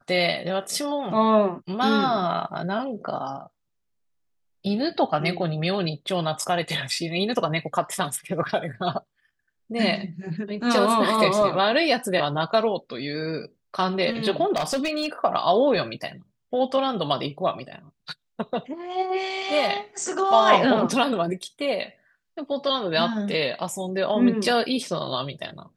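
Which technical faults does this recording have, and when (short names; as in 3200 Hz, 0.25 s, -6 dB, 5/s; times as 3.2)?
14.56–15.07 clipped -20.5 dBFS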